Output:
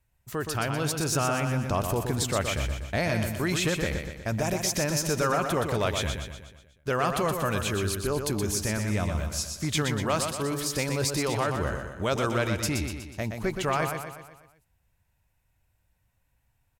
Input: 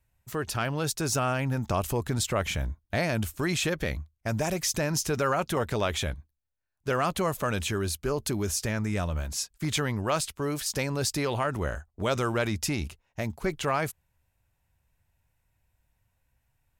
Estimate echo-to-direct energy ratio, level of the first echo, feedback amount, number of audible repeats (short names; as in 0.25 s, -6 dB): -4.5 dB, -6.0 dB, 51%, 5